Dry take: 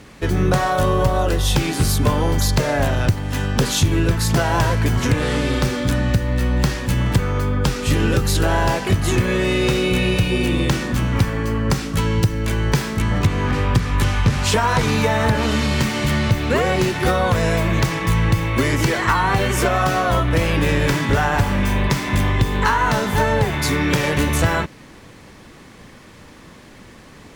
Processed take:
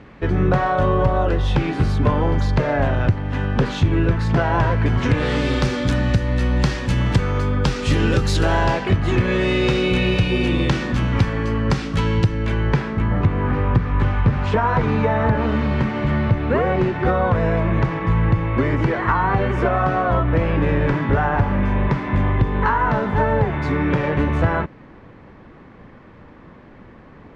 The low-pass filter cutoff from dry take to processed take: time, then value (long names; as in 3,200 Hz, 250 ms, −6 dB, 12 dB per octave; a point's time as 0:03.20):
0:04.78 2,200 Hz
0:05.46 5,500 Hz
0:08.51 5,500 Hz
0:09.04 2,400 Hz
0:09.35 4,300 Hz
0:12.09 4,300 Hz
0:13.08 1,600 Hz